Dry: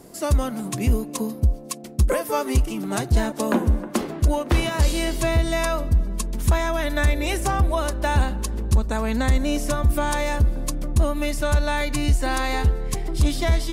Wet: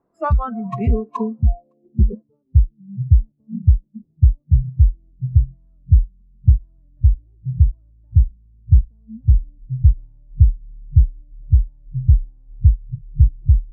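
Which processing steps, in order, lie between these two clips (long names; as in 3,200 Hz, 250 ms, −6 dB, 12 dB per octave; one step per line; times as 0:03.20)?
low-pass filter sweep 1,200 Hz → 120 Hz, 0:01.30–0:02.46
noise reduction from a noise print of the clip's start 29 dB
level +4 dB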